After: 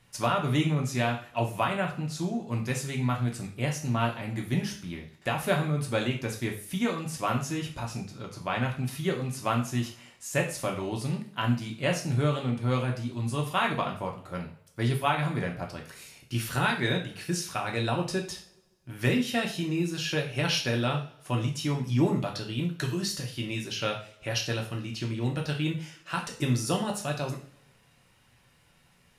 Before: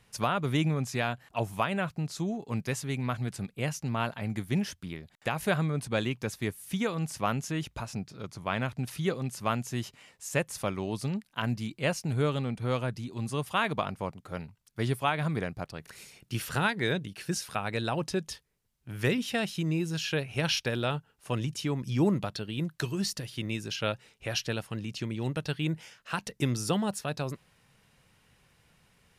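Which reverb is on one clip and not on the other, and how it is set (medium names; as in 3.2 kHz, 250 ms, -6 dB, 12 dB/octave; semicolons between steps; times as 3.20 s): two-slope reverb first 0.42 s, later 1.6 s, from -25 dB, DRR 0 dB; trim -1 dB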